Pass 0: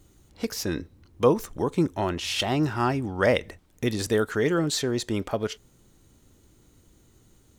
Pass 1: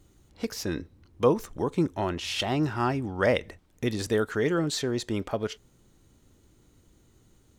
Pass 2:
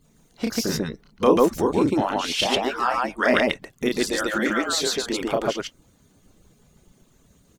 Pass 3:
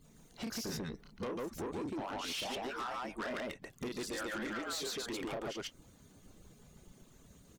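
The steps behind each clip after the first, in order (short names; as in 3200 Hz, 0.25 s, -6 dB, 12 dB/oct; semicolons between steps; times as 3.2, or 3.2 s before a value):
high shelf 7600 Hz -5 dB; gain -2 dB
median-filter separation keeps percussive; loudspeakers at several distances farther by 11 m -3 dB, 49 m 0 dB; gain +5.5 dB
compressor 12:1, threshold -29 dBFS, peak gain reduction 18 dB; soft clip -33 dBFS, distortion -9 dB; gain -2 dB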